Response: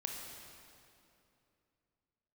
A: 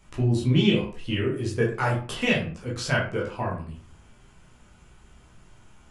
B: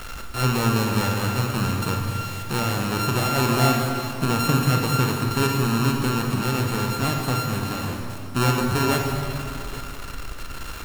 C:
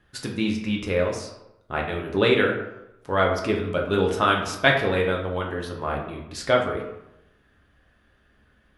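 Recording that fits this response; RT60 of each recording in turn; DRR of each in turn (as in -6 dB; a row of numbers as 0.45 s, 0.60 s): B; 0.45 s, 2.8 s, 0.90 s; -4.0 dB, 0.5 dB, -0.5 dB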